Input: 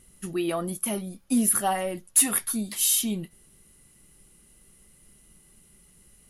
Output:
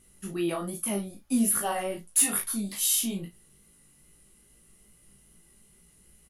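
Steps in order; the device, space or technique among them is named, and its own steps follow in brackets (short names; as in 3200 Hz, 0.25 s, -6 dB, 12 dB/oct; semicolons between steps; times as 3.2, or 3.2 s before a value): double-tracked vocal (doubler 35 ms -7 dB; chorus 2.4 Hz, delay 17.5 ms, depth 3.9 ms)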